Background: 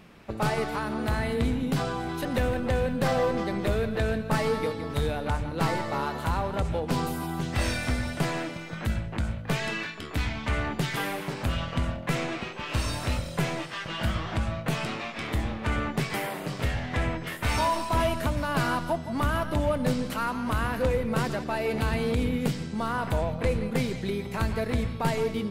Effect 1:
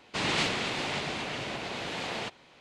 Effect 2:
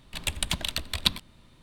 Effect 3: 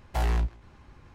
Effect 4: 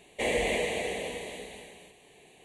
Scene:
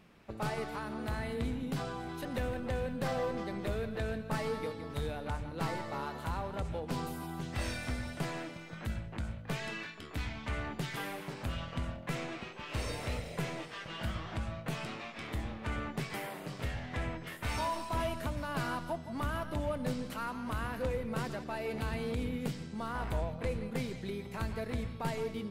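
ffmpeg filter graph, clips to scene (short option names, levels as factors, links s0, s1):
-filter_complex "[0:a]volume=0.355[s0];[4:a]lowpass=2800[s1];[3:a]bass=f=250:g=-3,treble=f=4000:g=-14[s2];[s1]atrim=end=2.44,asetpts=PTS-STARTPTS,volume=0.168,afade=t=in:d=0.004:c=hsin,afade=t=out:st=2.436:d=0.004:c=hsin,adelay=12540[s3];[s2]atrim=end=1.14,asetpts=PTS-STARTPTS,volume=0.224,afade=t=in:d=0.004:c=hsin,afade=t=out:st=1.136:d=0.004:c=hsin,adelay=22800[s4];[s0][s3][s4]amix=inputs=3:normalize=0"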